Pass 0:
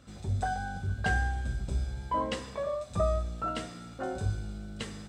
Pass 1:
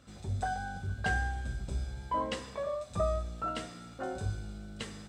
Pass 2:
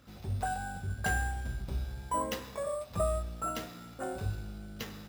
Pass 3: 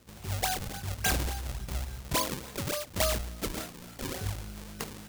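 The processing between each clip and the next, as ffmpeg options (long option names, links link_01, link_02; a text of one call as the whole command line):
ffmpeg -i in.wav -af "lowshelf=frequency=360:gain=-2.5,volume=-1.5dB" out.wav
ffmpeg -i in.wav -af "acrusher=samples=5:mix=1:aa=0.000001" out.wav
ffmpeg -i in.wav -af "acrusher=samples=38:mix=1:aa=0.000001:lfo=1:lforange=60.8:lforate=3.5,highshelf=frequency=3000:gain=12" out.wav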